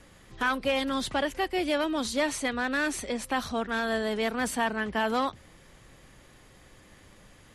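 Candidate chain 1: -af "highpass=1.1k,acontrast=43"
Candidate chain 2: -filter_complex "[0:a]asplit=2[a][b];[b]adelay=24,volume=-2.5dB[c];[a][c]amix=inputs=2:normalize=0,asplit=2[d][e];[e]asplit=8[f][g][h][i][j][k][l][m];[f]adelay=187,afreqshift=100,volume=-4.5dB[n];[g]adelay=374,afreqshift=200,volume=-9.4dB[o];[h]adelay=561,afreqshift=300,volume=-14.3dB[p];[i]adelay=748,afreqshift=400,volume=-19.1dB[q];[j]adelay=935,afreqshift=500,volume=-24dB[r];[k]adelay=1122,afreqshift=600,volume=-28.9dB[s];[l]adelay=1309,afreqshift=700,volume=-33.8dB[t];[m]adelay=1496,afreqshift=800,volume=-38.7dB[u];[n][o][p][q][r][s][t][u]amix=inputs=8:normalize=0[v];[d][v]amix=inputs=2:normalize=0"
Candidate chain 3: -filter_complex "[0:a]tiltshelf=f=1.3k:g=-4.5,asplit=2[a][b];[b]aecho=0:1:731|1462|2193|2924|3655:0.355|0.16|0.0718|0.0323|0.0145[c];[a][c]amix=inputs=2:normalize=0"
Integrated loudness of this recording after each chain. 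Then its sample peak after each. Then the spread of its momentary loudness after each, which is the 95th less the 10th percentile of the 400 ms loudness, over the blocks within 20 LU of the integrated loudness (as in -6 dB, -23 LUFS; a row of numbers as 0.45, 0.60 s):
-27.0, -25.5, -29.0 LUFS; -12.0, -11.0, -15.0 dBFS; 4, 6, 16 LU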